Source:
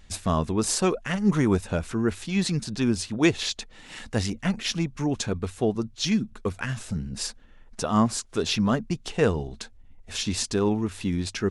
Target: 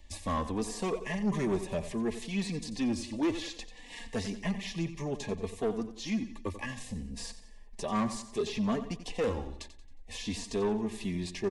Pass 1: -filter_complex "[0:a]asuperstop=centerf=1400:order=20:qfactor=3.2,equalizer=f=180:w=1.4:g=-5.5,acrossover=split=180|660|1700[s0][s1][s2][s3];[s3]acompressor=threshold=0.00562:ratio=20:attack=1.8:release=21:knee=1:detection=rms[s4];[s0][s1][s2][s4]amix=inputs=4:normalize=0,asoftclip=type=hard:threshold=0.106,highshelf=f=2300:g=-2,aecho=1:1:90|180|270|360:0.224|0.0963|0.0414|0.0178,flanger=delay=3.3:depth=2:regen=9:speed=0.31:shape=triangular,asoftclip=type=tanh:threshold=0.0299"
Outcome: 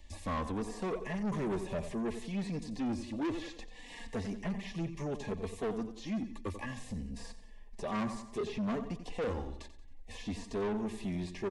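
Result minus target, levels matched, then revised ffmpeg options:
compression: peak gain reduction +11 dB; saturation: distortion +9 dB
-filter_complex "[0:a]asuperstop=centerf=1400:order=20:qfactor=3.2,equalizer=f=180:w=1.4:g=-5.5,acrossover=split=180|660|1700[s0][s1][s2][s3];[s3]acompressor=threshold=0.0211:ratio=20:attack=1.8:release=21:knee=1:detection=rms[s4];[s0][s1][s2][s4]amix=inputs=4:normalize=0,asoftclip=type=hard:threshold=0.106,highshelf=f=2300:g=-2,aecho=1:1:90|180|270|360:0.224|0.0963|0.0414|0.0178,flanger=delay=3.3:depth=2:regen=9:speed=0.31:shape=triangular,asoftclip=type=tanh:threshold=0.075"

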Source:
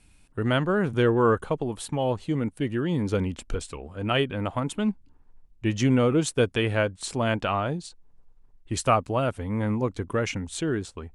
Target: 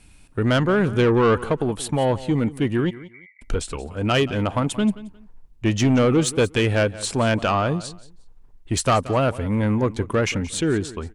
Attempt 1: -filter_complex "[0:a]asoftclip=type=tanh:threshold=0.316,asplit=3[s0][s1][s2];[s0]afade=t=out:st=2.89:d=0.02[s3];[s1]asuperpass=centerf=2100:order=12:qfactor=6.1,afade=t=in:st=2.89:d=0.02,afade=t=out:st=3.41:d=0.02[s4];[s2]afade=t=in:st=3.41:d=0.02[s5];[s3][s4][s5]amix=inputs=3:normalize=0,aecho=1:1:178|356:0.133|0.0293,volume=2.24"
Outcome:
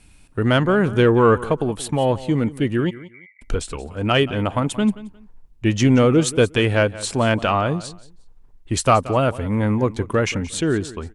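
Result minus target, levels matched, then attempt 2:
saturation: distortion -12 dB
-filter_complex "[0:a]asoftclip=type=tanh:threshold=0.112,asplit=3[s0][s1][s2];[s0]afade=t=out:st=2.89:d=0.02[s3];[s1]asuperpass=centerf=2100:order=12:qfactor=6.1,afade=t=in:st=2.89:d=0.02,afade=t=out:st=3.41:d=0.02[s4];[s2]afade=t=in:st=3.41:d=0.02[s5];[s3][s4][s5]amix=inputs=3:normalize=0,aecho=1:1:178|356:0.133|0.0293,volume=2.24"

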